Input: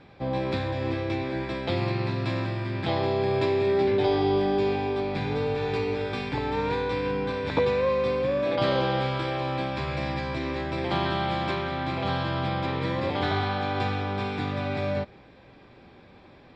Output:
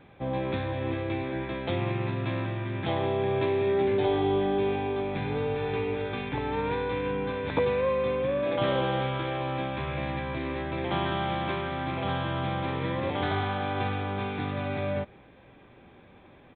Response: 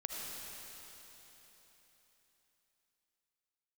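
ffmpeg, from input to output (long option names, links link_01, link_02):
-af "aresample=8000,aresample=44100,volume=-2dB"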